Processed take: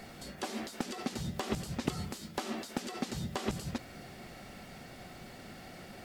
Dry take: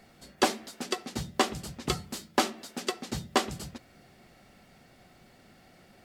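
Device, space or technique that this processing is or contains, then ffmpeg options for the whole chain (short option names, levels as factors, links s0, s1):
de-esser from a sidechain: -filter_complex "[0:a]asplit=2[s0][s1];[s1]highpass=6100,apad=whole_len=266607[s2];[s0][s2]sidechaincompress=threshold=0.00141:ratio=8:attack=4:release=43,volume=2.66"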